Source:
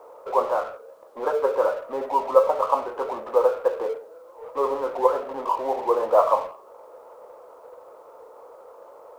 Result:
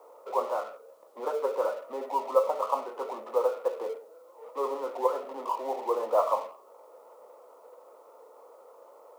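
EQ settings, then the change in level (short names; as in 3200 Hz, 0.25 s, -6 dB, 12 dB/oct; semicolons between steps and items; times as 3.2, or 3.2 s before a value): steep high-pass 190 Hz 72 dB/oct; high shelf 3900 Hz +6.5 dB; notch 1600 Hz, Q 7.8; -7.0 dB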